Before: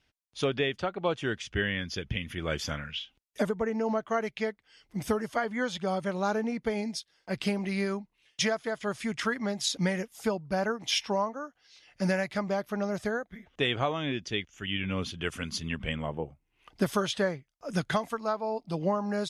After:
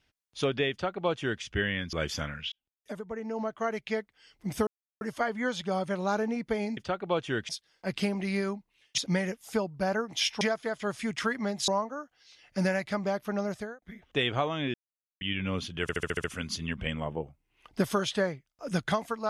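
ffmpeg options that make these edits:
-filter_complex "[0:a]asplit=18[a][b][c][d][e][f][g][h][i][j][k][l][m][n][o][p][q][r];[a]atrim=end=1.932[s];[b]atrim=start=2.428:end=3.02,asetpts=PTS-STARTPTS,afade=t=out:st=0.588:d=0.004:c=hsin[t];[c]atrim=start=3.02:end=5.17,asetpts=PTS-STARTPTS,afade=t=in:d=1.42,afade=t=out:st=2.146:d=0.004:c=hsin,apad=pad_dur=0.34[u];[d]atrim=start=5.17:end=6.932,asetpts=PTS-STARTPTS,afade=t=in:d=0.004:c=hsin[v];[e]atrim=start=0.708:end=1.432[w];[f]atrim=start=6.928:end=8.422[x];[g]atrim=start=9.688:end=11.122[y];[h]atrim=start=8.418:end=9.692[z];[i]atrim=start=11.118:end=13.26,asetpts=PTS-STARTPTS,afade=t=out:st=1.772:d=0.37[aa];[j]atrim=start=13.26:end=14.18,asetpts=PTS-STARTPTS,afade=t=in:d=0.004:c=hsin,afade=t=out:st=0.916:d=0.004:c=hsin[ab];[k]atrim=start=14.18:end=14.65,asetpts=PTS-STARTPTS,volume=0[ac];[l]atrim=start=14.65:end=15.332,asetpts=PTS-STARTPTS,afade=t=in:d=0.004:c=hsin[ad];[m]atrim=start=15.258:end=15.332[ae];[n]atrim=start=15.258:end=15.332[af];[o]atrim=start=15.258:end=15.332[ag];[p]atrim=start=15.258:end=15.332[ah];[q]atrim=start=15.258:end=15.332[ai];[r]atrim=start=15.258[aj];[t][u][v]concat=n=3:v=0:a=1[ak];[s][ak]acrossfade=d=0.004:c1=hsin:c2=hsin[al];[al][w]acrossfade=d=0.004:c1=hsin:c2=hsin[am];[am][x]acrossfade=d=0.004:c1=hsin:c2=hsin[an];[an][y]acrossfade=d=0.004:c1=hsin:c2=hsin[ao];[ao][z]acrossfade=d=0.004:c1=hsin:c2=hsin[ap];[aa][ab][ac][ad]concat=n=4:v=0:a=1[aq];[ap][aq]acrossfade=d=0.004:c1=hsin:c2=hsin[ar];[ar][ae]acrossfade=d=0.004:c1=hsin:c2=hsin[as];[as][af]acrossfade=d=0.004:c1=hsin:c2=hsin[at];[at][ag]acrossfade=d=0.004:c1=hsin:c2=hsin[au];[au][ah]acrossfade=d=0.004:c1=hsin:c2=hsin[av];[av][ai]acrossfade=d=0.004:c1=hsin:c2=hsin[aw];[aw][aj]acrossfade=d=0.004:c1=hsin:c2=hsin"

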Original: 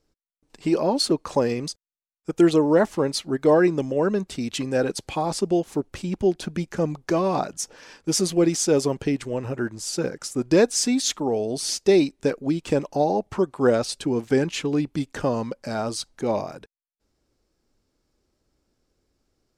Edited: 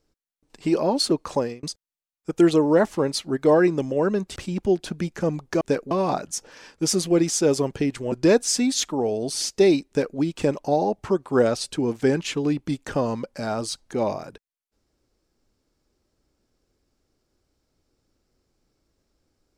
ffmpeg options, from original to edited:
-filter_complex "[0:a]asplit=6[a][b][c][d][e][f];[a]atrim=end=1.63,asetpts=PTS-STARTPTS,afade=t=out:st=1.32:d=0.31[g];[b]atrim=start=1.63:end=4.362,asetpts=PTS-STARTPTS,afade=t=in:d=0.004:c=hsin[h];[c]atrim=start=5.918:end=7.172[i];[d]atrim=start=12.158:end=12.462[j];[e]atrim=start=7.168:end=9.382[k];[f]atrim=start=10.398[l];[g][h]concat=n=2:v=0:a=1[m];[m][i]acrossfade=d=0.004:c1=hsin:c2=hsin[n];[n][j]acrossfade=d=0.004:c1=hsin:c2=hsin[o];[o][k]acrossfade=d=0.004:c1=hsin:c2=hsin[p];[p][l]acrossfade=d=0.004:c1=hsin:c2=hsin"

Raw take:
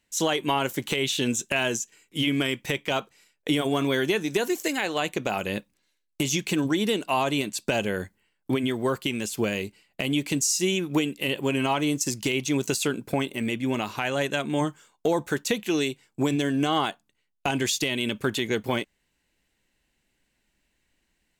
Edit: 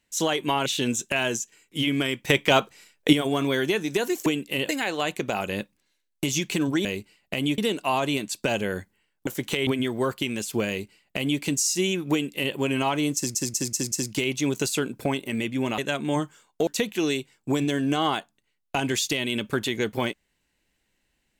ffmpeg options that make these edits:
-filter_complex "[0:a]asplit=16[a][b][c][d][e][f][g][h][i][j][k][l][m][n][o][p];[a]atrim=end=0.662[q];[b]atrim=start=1.058:end=2.702[r];[c]atrim=start=2.698:end=3.532,asetpts=PTS-STARTPTS,volume=7.5dB[s];[d]atrim=start=3.528:end=4.662[t];[e]atrim=start=10.958:end=11.392[u];[f]atrim=start=4.658:end=6.822[v];[g]atrim=start=9.518:end=10.252[w];[h]atrim=start=6.818:end=8.512[x];[i]atrim=start=0.658:end=1.062[y];[j]atrim=start=8.508:end=12.192[z];[k]atrim=start=11.998:end=12.192[aa];[l]atrim=start=11.998:end=12.192[ab];[m]atrim=start=11.998:end=12.192[ac];[n]atrim=start=11.998:end=13.862[ad];[o]atrim=start=14.228:end=15.122[ae];[p]atrim=start=15.378[af];[q][r]acrossfade=d=0.004:c1=hsin:c2=hsin[ag];[ag][s]acrossfade=d=0.004:c1=hsin:c2=hsin[ah];[ah][t]acrossfade=d=0.004:c1=hsin:c2=hsin[ai];[ai][u]acrossfade=d=0.004:c1=hsin:c2=hsin[aj];[aj][v]acrossfade=d=0.004:c1=hsin:c2=hsin[ak];[ak][w]acrossfade=d=0.004:c1=hsin:c2=hsin[al];[al][x]acrossfade=d=0.004:c1=hsin:c2=hsin[am];[am][y]acrossfade=d=0.004:c1=hsin:c2=hsin[an];[an][z]acrossfade=d=0.004:c1=hsin:c2=hsin[ao];[ao][aa]acrossfade=d=0.004:c1=hsin:c2=hsin[ap];[ap][ab]acrossfade=d=0.004:c1=hsin:c2=hsin[aq];[aq][ac]acrossfade=d=0.004:c1=hsin:c2=hsin[ar];[ar][ad]acrossfade=d=0.004:c1=hsin:c2=hsin[as];[as][ae]acrossfade=d=0.004:c1=hsin:c2=hsin[at];[at][af]acrossfade=d=0.004:c1=hsin:c2=hsin"

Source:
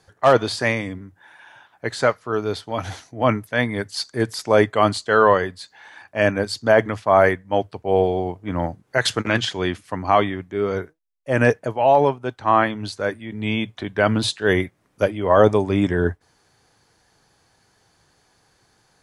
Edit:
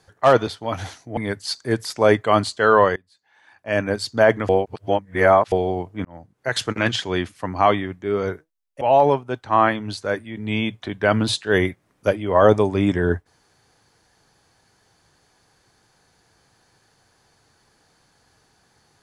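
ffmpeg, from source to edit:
-filter_complex "[0:a]asplit=8[a][b][c][d][e][f][g][h];[a]atrim=end=0.472[i];[b]atrim=start=2.528:end=3.232[j];[c]atrim=start=3.658:end=5.45,asetpts=PTS-STARTPTS,afade=t=out:st=1.788:d=0.004:c=hsin:silence=0.0668344[k];[d]atrim=start=5.45:end=6.982,asetpts=PTS-STARTPTS,afade=t=in:d=0.98:c=qua:silence=0.0668344[l];[e]atrim=start=6.978:end=8.012,asetpts=PTS-STARTPTS,areverse[m];[f]atrim=start=8.008:end=8.54,asetpts=PTS-STARTPTS,afade=t=out:st=0.528:d=0.004:c=hsin[n];[g]atrim=start=8.54:end=11.302,asetpts=PTS-STARTPTS,afade=t=in:d=1.05:c=qsin[o];[h]atrim=start=11.758[p];[i][j]acrossfade=d=0.004:c1=hsin:c2=hsin[q];[k][l]concat=n=2:v=0:a=1[r];[q][r]acrossfade=d=0.004:c1=hsin:c2=hsin[s];[s][m]acrossfade=d=0.004:c1=hsin:c2=hsin[t];[n][o]concat=n=2:v=0:a=1[u];[t][u]acrossfade=d=0.004:c1=hsin:c2=hsin[v];[v][p]acrossfade=d=0.004:c1=hsin:c2=hsin"

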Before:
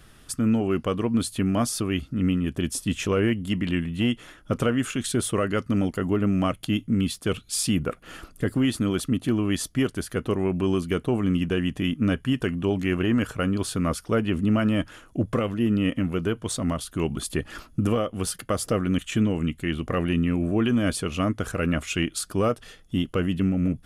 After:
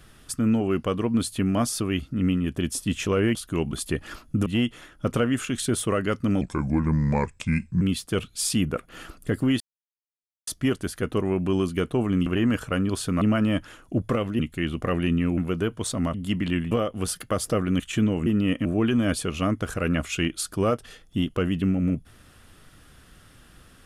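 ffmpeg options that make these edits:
-filter_complex "[0:a]asplit=15[a][b][c][d][e][f][g][h][i][j][k][l][m][n][o];[a]atrim=end=3.352[p];[b]atrim=start=16.788:end=17.902[q];[c]atrim=start=3.918:end=5.874[r];[d]atrim=start=5.87:end=6.95,asetpts=PTS-STARTPTS,asetrate=33957,aresample=44100[s];[e]atrim=start=6.946:end=8.74,asetpts=PTS-STARTPTS,afade=t=out:st=1.79:d=0.004:c=hsin[t];[f]atrim=start=8.74:end=9.61,asetpts=PTS-STARTPTS,volume=0[u];[g]atrim=start=9.61:end=11.402,asetpts=PTS-STARTPTS,afade=t=in:d=0.004:c=hsin[v];[h]atrim=start=12.938:end=13.892[w];[i]atrim=start=14.448:end=15.632[x];[j]atrim=start=19.448:end=20.432[y];[k]atrim=start=16.018:end=16.792[z];[l]atrim=start=3.348:end=3.922[aa];[m]atrim=start=17.898:end=19.452[ab];[n]atrim=start=15.628:end=16.022[ac];[o]atrim=start=20.428[ad];[p][q]acrossfade=d=0.004:c1=hsin:c2=hsin[ae];[ae][r]acrossfade=d=0.004:c1=hsin:c2=hsin[af];[af][s]acrossfade=d=0.004:c1=hsin:c2=hsin[ag];[t][u][v]concat=n=3:v=0:a=1[ah];[ag][ah]acrossfade=d=0.004:c1=hsin:c2=hsin[ai];[ai][w]acrossfade=d=0.004:c1=hsin:c2=hsin[aj];[aj][x]acrossfade=d=0.004:c1=hsin:c2=hsin[ak];[ak][y]acrossfade=d=0.004:c1=hsin:c2=hsin[al];[al][z]acrossfade=d=0.004:c1=hsin:c2=hsin[am];[am][aa]acrossfade=d=0.004:c1=hsin:c2=hsin[an];[an][ab]acrossfade=d=0.004:c1=hsin:c2=hsin[ao];[ao][ac]acrossfade=d=0.004:c1=hsin:c2=hsin[ap];[ap][ad]acrossfade=d=0.004:c1=hsin:c2=hsin"

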